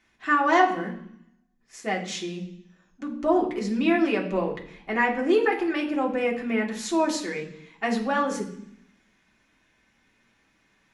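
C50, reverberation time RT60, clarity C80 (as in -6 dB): 10.0 dB, 0.65 s, 13.5 dB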